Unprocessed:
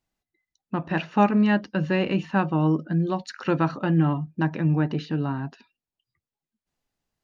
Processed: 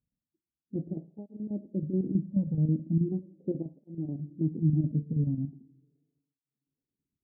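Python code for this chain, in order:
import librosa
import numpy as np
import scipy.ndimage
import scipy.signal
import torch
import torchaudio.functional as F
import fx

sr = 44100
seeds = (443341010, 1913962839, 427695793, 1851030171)

p1 = fx.chopper(x, sr, hz=9.3, depth_pct=65, duty_pct=70)
p2 = fx.rider(p1, sr, range_db=10, speed_s=0.5)
p3 = p1 + (p2 * librosa.db_to_amplitude(-1.0))
p4 = scipy.ndimage.gaussian_filter1d(p3, 24.0, mode='constant')
p5 = fx.rev_double_slope(p4, sr, seeds[0], early_s=0.62, late_s=2.4, knee_db=-18, drr_db=13.0)
p6 = fx.flanger_cancel(p5, sr, hz=0.39, depth_ms=3.0)
y = p6 * librosa.db_to_amplitude(-4.0)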